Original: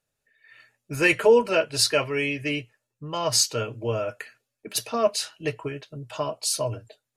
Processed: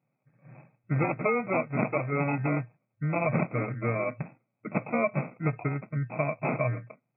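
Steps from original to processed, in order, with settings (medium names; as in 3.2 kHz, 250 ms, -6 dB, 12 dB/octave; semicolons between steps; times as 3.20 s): sample-rate reducer 1.7 kHz, jitter 0%; fifteen-band graphic EQ 160 Hz +4 dB, 400 Hz -10 dB, 1 kHz -9 dB; compression 6:1, threshold -28 dBFS, peak gain reduction 11 dB; FFT band-pass 110–2600 Hz; trim +6 dB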